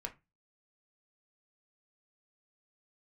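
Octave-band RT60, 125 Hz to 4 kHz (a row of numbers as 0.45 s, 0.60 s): 0.40 s, 0.30 s, 0.25 s, 0.25 s, 0.20 s, 0.15 s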